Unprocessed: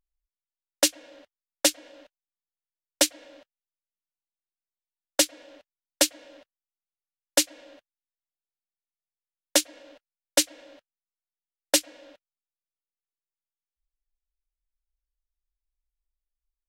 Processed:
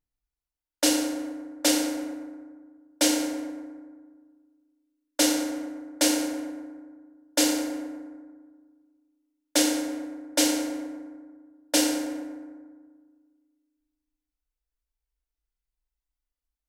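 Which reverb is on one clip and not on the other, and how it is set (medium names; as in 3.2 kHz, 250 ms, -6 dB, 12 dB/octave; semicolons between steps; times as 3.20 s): FDN reverb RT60 1.6 s, low-frequency decay 1.35×, high-frequency decay 0.45×, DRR -7.5 dB; trim -6.5 dB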